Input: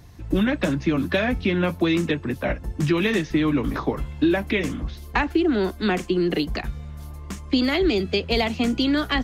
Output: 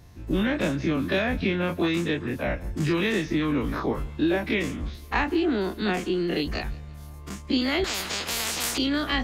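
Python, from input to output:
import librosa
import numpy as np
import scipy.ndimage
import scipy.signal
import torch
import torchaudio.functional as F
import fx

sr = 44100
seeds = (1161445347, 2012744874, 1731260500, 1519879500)

y = fx.spec_dilate(x, sr, span_ms=60)
y = fx.echo_feedback(y, sr, ms=170, feedback_pct=45, wet_db=-23.0)
y = fx.spectral_comp(y, sr, ratio=10.0, at=(7.84, 8.78))
y = F.gain(torch.from_numpy(y), -6.5).numpy()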